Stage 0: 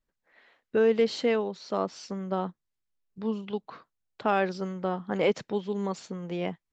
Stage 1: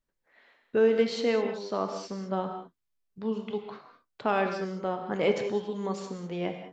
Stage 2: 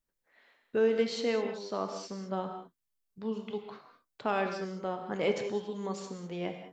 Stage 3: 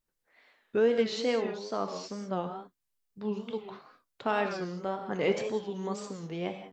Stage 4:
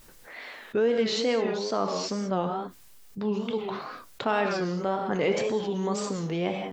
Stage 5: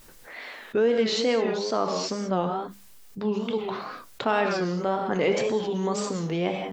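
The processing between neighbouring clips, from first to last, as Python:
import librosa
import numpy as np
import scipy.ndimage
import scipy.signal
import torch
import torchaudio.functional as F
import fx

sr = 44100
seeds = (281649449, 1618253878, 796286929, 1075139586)

y1 = fx.rev_gated(x, sr, seeds[0], gate_ms=230, shape='flat', drr_db=5.0)
y1 = y1 * 10.0 ** (-1.5 / 20.0)
y2 = fx.high_shelf(y1, sr, hz=6100.0, db=7.5)
y2 = y2 * 10.0 ** (-4.0 / 20.0)
y3 = fx.wow_flutter(y2, sr, seeds[1], rate_hz=2.1, depth_cents=110.0)
y3 = y3 * 10.0 ** (1.5 / 20.0)
y4 = fx.env_flatten(y3, sr, amount_pct=50)
y5 = fx.hum_notches(y4, sr, base_hz=50, count=4)
y5 = y5 * 10.0 ** (2.0 / 20.0)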